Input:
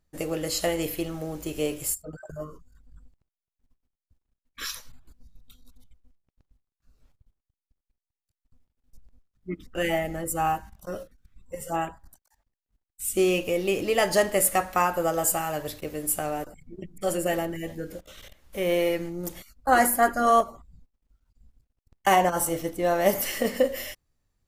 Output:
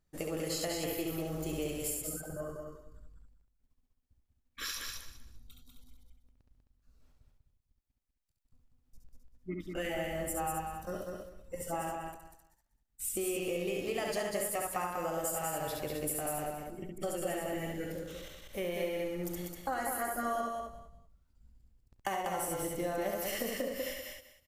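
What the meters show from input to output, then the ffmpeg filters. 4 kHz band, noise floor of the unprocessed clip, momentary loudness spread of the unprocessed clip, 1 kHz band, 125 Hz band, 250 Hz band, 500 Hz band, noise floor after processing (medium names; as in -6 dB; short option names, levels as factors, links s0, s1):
-7.5 dB, under -85 dBFS, 17 LU, -12.0 dB, -6.5 dB, -8.5 dB, -9.5 dB, -78 dBFS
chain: -filter_complex "[0:a]asplit=2[s0][s1];[s1]aecho=0:1:35|68:0.126|0.668[s2];[s0][s2]amix=inputs=2:normalize=0,acompressor=threshold=0.0355:ratio=6,asplit=2[s3][s4];[s4]aecho=0:1:194|388|582:0.631|0.133|0.0278[s5];[s3][s5]amix=inputs=2:normalize=0,volume=0.596"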